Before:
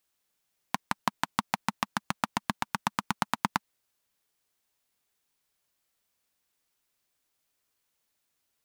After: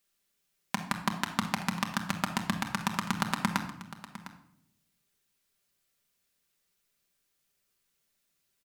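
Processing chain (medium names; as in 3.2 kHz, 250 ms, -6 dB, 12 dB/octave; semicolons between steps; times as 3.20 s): peaking EQ 850 Hz -6 dB 0.91 oct; delay 705 ms -15.5 dB; on a send at -3 dB: reverberation RT60 0.75 s, pre-delay 5 ms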